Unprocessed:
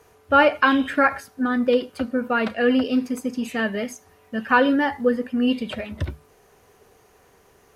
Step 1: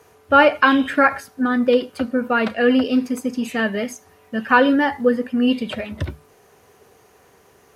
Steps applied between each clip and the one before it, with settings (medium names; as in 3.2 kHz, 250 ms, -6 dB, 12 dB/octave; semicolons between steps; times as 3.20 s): high-pass 75 Hz; trim +3 dB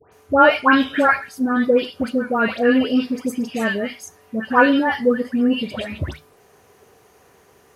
phase dispersion highs, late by 123 ms, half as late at 1.7 kHz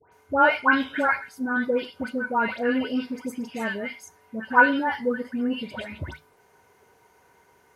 small resonant body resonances 940/1500/2100 Hz, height 14 dB, ringing for 55 ms; trim -8.5 dB